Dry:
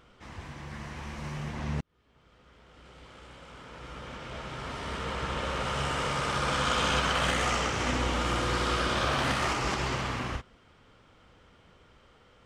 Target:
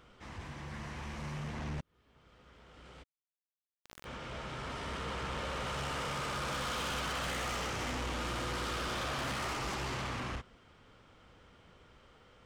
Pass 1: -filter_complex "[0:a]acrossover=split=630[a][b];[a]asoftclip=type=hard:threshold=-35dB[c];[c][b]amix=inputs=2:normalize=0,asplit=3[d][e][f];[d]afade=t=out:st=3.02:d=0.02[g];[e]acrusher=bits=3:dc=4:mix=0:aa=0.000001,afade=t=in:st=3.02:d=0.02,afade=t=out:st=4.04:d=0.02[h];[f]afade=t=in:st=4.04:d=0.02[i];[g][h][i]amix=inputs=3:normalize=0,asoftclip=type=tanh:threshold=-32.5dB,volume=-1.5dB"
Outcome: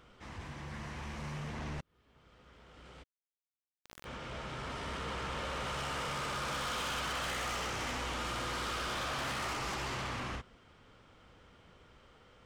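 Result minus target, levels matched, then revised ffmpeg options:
hard clip: distortion +17 dB
-filter_complex "[0:a]acrossover=split=630[a][b];[a]asoftclip=type=hard:threshold=-25dB[c];[c][b]amix=inputs=2:normalize=0,asplit=3[d][e][f];[d]afade=t=out:st=3.02:d=0.02[g];[e]acrusher=bits=3:dc=4:mix=0:aa=0.000001,afade=t=in:st=3.02:d=0.02,afade=t=out:st=4.04:d=0.02[h];[f]afade=t=in:st=4.04:d=0.02[i];[g][h][i]amix=inputs=3:normalize=0,asoftclip=type=tanh:threshold=-32.5dB,volume=-1.5dB"

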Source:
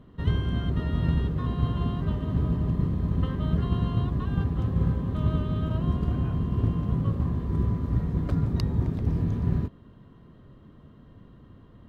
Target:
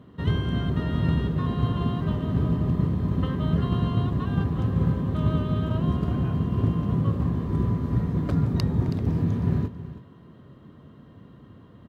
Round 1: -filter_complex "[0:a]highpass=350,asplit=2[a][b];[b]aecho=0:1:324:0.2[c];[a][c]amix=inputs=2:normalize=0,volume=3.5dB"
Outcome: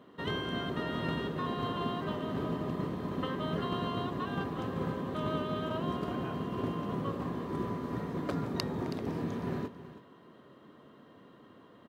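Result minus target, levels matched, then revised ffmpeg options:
125 Hz band -6.0 dB
-filter_complex "[0:a]highpass=92,asplit=2[a][b];[b]aecho=0:1:324:0.2[c];[a][c]amix=inputs=2:normalize=0,volume=3.5dB"

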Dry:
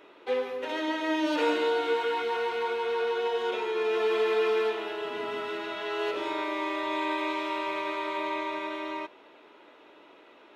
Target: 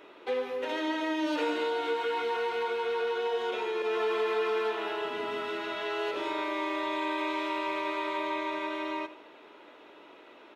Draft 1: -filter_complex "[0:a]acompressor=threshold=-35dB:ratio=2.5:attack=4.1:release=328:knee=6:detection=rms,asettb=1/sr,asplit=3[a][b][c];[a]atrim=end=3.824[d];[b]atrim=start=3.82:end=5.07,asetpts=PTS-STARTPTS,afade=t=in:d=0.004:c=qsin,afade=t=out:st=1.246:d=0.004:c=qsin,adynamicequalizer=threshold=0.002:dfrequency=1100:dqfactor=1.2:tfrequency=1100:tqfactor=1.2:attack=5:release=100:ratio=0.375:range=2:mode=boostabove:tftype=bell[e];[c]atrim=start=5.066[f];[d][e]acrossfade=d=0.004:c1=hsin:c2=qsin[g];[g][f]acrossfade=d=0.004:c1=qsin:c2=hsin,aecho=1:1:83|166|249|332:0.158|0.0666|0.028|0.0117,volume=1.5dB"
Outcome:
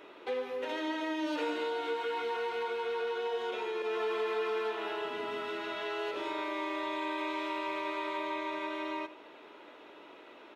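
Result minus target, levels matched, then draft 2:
compressor: peak gain reduction +4 dB
-filter_complex "[0:a]acompressor=threshold=-28.5dB:ratio=2.5:attack=4.1:release=328:knee=6:detection=rms,asettb=1/sr,asplit=3[a][b][c];[a]atrim=end=3.824[d];[b]atrim=start=3.82:end=5.07,asetpts=PTS-STARTPTS,afade=t=in:d=0.004:c=qsin,afade=t=out:st=1.246:d=0.004:c=qsin,adynamicequalizer=threshold=0.002:dfrequency=1100:dqfactor=1.2:tfrequency=1100:tqfactor=1.2:attack=5:release=100:ratio=0.375:range=2:mode=boostabove:tftype=bell[e];[c]atrim=start=5.066[f];[d][e]acrossfade=d=0.004:c1=hsin:c2=qsin[g];[g][f]acrossfade=d=0.004:c1=qsin:c2=hsin,aecho=1:1:83|166|249|332:0.158|0.0666|0.028|0.0117,volume=1.5dB"

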